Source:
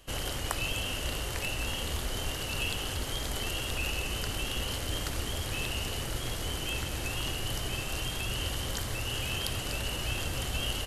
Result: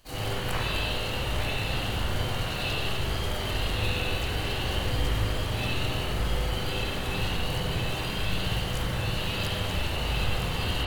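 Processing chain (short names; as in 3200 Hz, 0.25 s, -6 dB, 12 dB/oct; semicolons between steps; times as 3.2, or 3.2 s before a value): harmoniser +5 st -5 dB, +7 st -2 dB; spring tank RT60 1.4 s, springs 38/48/56 ms, chirp 65 ms, DRR -10 dB; gain -7.5 dB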